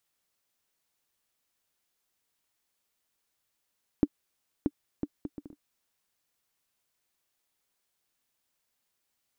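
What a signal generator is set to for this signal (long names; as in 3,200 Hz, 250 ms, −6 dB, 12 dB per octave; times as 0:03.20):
bouncing ball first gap 0.63 s, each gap 0.59, 292 Hz, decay 47 ms −10.5 dBFS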